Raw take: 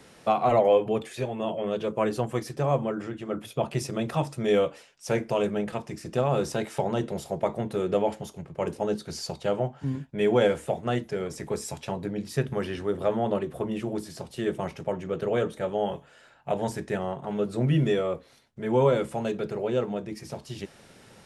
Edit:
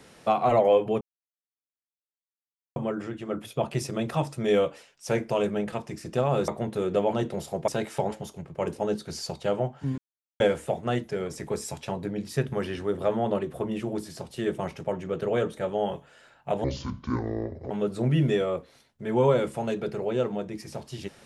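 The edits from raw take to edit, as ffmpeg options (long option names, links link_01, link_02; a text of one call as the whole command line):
ffmpeg -i in.wav -filter_complex "[0:a]asplit=11[link_01][link_02][link_03][link_04][link_05][link_06][link_07][link_08][link_09][link_10][link_11];[link_01]atrim=end=1.01,asetpts=PTS-STARTPTS,afade=type=out:start_time=1.006:duration=0.004:curve=hsin[link_12];[link_02]atrim=start=1.01:end=2.76,asetpts=PTS-STARTPTS,volume=0[link_13];[link_03]atrim=start=2.76:end=6.482,asetpts=PTS-STARTPTS,afade=type=in:duration=0.004:curve=hsin[link_14];[link_04]atrim=start=7.458:end=8.112[link_15];[link_05]atrim=start=6.908:end=7.462[link_16];[link_06]atrim=start=6.478:end=6.912[link_17];[link_07]atrim=start=8.108:end=9.98,asetpts=PTS-STARTPTS,afade=type=out:start_time=1.868:duration=0.004:curve=hsin[link_18];[link_08]atrim=start=9.98:end=10.4,asetpts=PTS-STARTPTS,volume=0[link_19];[link_09]atrim=start=10.4:end=16.644,asetpts=PTS-STARTPTS,afade=type=in:duration=0.004:curve=hsin[link_20];[link_10]atrim=start=16.64:end=17.28,asetpts=PTS-STARTPTS,asetrate=26460,aresample=44100[link_21];[link_11]atrim=start=17.276[link_22];[link_12][link_13][link_14]concat=n=3:v=0:a=1[link_23];[link_23][link_15]acrossfade=duration=0.004:curve1=hsin:curve2=hsin[link_24];[link_24][link_16]acrossfade=duration=0.004:curve1=hsin:curve2=hsin[link_25];[link_25][link_17]acrossfade=duration=0.004:curve1=hsin:curve2=hsin[link_26];[link_18][link_19][link_20]concat=n=3:v=0:a=1[link_27];[link_26][link_27]acrossfade=duration=0.004:curve1=hsin:curve2=hsin[link_28];[link_28][link_21]acrossfade=duration=0.004:curve1=hsin:curve2=hsin[link_29];[link_29][link_22]acrossfade=duration=0.004:curve1=hsin:curve2=hsin" out.wav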